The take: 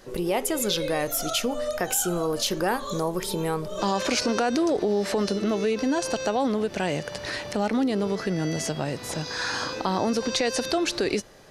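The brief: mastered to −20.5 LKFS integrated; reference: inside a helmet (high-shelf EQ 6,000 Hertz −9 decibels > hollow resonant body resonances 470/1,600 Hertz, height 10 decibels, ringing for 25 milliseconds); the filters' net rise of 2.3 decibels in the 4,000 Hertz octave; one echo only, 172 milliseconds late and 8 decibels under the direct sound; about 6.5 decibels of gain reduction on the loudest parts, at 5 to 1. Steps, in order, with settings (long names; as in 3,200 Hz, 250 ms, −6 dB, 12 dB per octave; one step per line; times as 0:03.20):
parametric band 4,000 Hz +6 dB
downward compressor 5 to 1, threshold −25 dBFS
high-shelf EQ 6,000 Hz −9 dB
single-tap delay 172 ms −8 dB
hollow resonant body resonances 470/1,600 Hz, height 10 dB, ringing for 25 ms
level +5 dB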